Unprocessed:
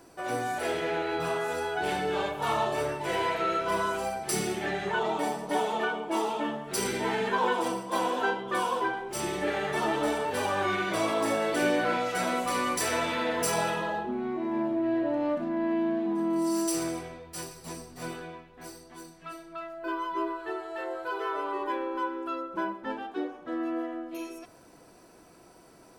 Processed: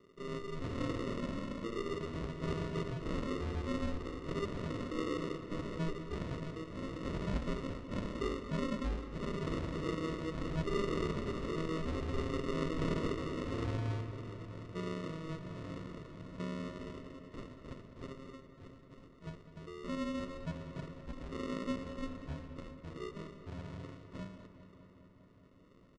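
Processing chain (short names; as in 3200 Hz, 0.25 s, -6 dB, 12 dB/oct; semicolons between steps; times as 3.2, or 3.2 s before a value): HPF 140 Hz 12 dB/oct; band shelf 710 Hz -10.5 dB 2.4 oct; in parallel at -12 dB: wrapped overs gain 31 dB; on the sum: LFO band-pass saw up 0.61 Hz 730–4000 Hz; sample-and-hold 30×; pitch shift -10.5 st; air absorption 120 m; on a send: darkening echo 0.203 s, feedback 80%, low-pass 4700 Hz, level -13 dB; on the sum: gain +6.5 dB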